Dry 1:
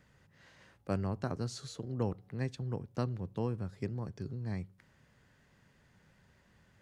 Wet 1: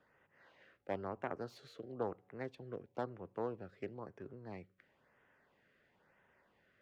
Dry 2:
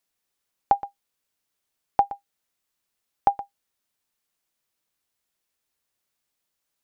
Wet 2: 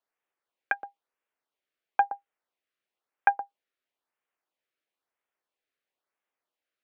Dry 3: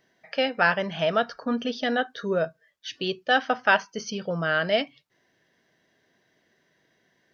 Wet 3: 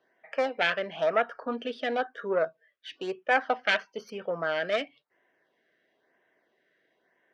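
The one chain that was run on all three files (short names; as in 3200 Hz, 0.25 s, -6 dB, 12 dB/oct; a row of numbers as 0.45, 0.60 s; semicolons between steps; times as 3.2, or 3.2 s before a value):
self-modulated delay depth 0.23 ms; three-band isolator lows -18 dB, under 310 Hz, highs -21 dB, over 3200 Hz; LFO notch sine 1 Hz 860–4600 Hz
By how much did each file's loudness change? -7.0, -3.0, -3.5 LU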